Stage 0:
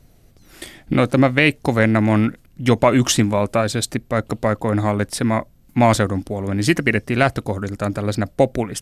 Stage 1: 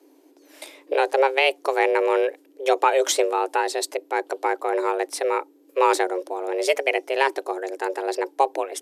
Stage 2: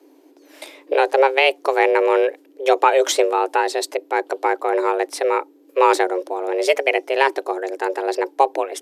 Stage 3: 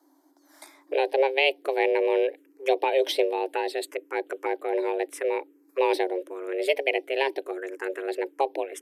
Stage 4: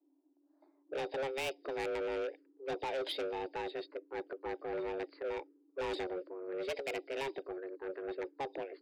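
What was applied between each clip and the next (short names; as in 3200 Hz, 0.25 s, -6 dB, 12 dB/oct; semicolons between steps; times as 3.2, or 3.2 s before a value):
frequency shift +270 Hz; gain -4.5 dB
bell 9800 Hz -5 dB 1.5 oct; gain +4 dB
envelope phaser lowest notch 440 Hz, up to 1300 Hz, full sweep at -15.5 dBFS; gain -4.5 dB
nonlinear frequency compression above 3600 Hz 4:1; low-pass opened by the level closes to 340 Hz, open at -19.5 dBFS; soft clip -25.5 dBFS, distortion -7 dB; gain -7.5 dB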